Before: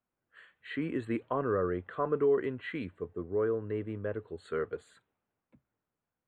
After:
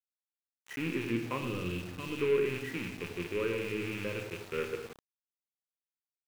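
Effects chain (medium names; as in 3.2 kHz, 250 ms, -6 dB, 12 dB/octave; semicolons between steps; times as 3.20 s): rattle on loud lows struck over -45 dBFS, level -25 dBFS; peaking EQ 690 Hz -14.5 dB 0.23 oct; on a send: feedback delay 108 ms, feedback 29%, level -14 dB; on the sum: time-frequency box 1.37–2.19 s, 350–2500 Hz -11 dB; distance through air 190 m; feedback comb 60 Hz, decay 0.27 s, harmonics all, mix 30%; simulated room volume 440 m³, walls mixed, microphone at 0.85 m; small samples zeroed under -43.5 dBFS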